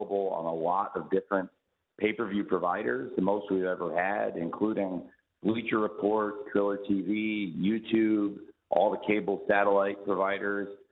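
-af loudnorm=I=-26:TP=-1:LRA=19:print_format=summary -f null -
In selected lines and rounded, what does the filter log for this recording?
Input Integrated:    -29.2 LUFS
Input True Peak:     -10.0 dBTP
Input LRA:             2.5 LU
Input Threshold:     -39.4 LUFS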